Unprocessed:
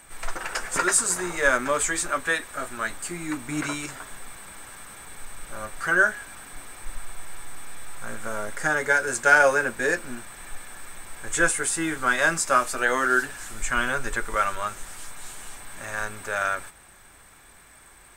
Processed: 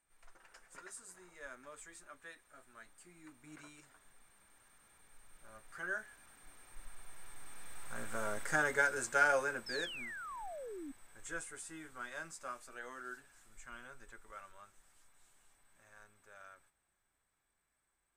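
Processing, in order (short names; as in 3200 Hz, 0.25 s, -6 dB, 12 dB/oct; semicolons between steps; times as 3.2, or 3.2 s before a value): Doppler pass-by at 8.33, 5 m/s, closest 2.9 m; painted sound fall, 9.66–10.92, 260–5400 Hz -38 dBFS; gain -7.5 dB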